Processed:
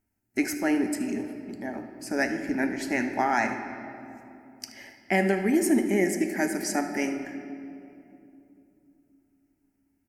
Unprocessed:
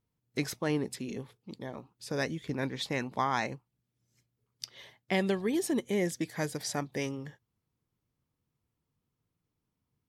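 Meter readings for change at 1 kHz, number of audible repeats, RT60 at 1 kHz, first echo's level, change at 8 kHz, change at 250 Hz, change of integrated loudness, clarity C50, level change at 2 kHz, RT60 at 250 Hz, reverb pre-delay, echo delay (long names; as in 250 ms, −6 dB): +6.0 dB, 1, 2.5 s, −15.0 dB, +6.0 dB, +8.0 dB, +6.0 dB, 7.0 dB, +8.0 dB, 4.1 s, 4 ms, 76 ms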